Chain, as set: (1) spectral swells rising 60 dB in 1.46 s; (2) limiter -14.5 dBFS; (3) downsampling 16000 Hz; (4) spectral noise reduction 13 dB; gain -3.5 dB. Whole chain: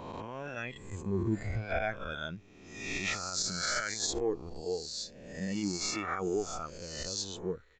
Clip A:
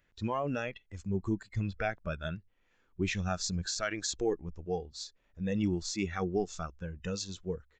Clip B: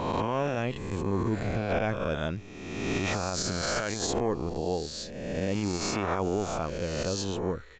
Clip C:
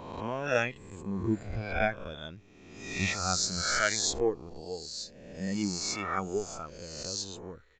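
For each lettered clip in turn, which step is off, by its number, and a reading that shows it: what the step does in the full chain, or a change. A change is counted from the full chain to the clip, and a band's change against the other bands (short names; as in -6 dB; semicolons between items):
1, 125 Hz band +5.0 dB; 4, 8 kHz band -6.5 dB; 2, mean gain reduction 2.0 dB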